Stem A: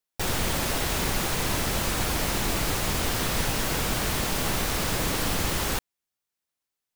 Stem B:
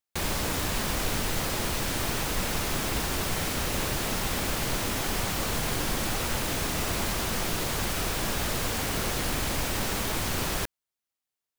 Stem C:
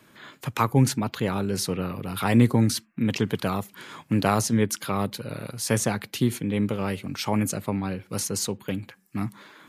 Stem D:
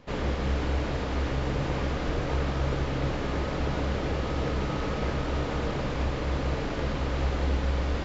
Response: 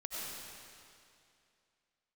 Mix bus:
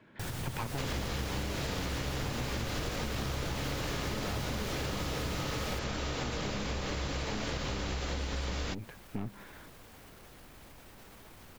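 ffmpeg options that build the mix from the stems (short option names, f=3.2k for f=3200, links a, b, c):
-filter_complex "[0:a]equalizer=f=120:t=o:w=1.1:g=13,alimiter=limit=-18.5dB:level=0:latency=1:release=230,volume=-8dB[a];[1:a]alimiter=limit=-23.5dB:level=0:latency=1:release=24,equalizer=f=6.8k:t=o:w=2.1:g=-5,adelay=1150,volume=-19.5dB[b];[2:a]lowpass=2.4k,bandreject=f=1.2k:w=5.3,aeval=exprs='(tanh(28.2*val(0)+0.8)-tanh(0.8))/28.2':c=same,volume=2.5dB[c];[3:a]crystalizer=i=5.5:c=0,adelay=700,volume=2.5dB[d];[b][c][d]amix=inputs=3:normalize=0,acompressor=threshold=-26dB:ratio=6,volume=0dB[e];[a][e]amix=inputs=2:normalize=0,acompressor=threshold=-34dB:ratio=2.5"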